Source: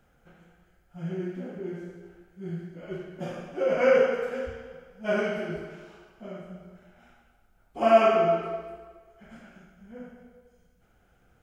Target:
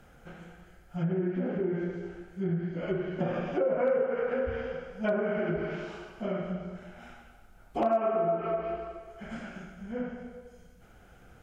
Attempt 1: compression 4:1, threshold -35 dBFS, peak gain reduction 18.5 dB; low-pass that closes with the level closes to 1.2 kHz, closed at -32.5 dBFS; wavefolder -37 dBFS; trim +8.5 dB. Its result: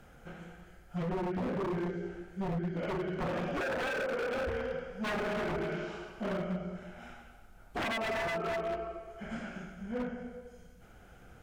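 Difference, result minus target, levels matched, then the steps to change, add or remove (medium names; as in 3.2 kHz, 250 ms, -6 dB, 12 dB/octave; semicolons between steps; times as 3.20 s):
wavefolder: distortion +36 dB
change: wavefolder -26.5 dBFS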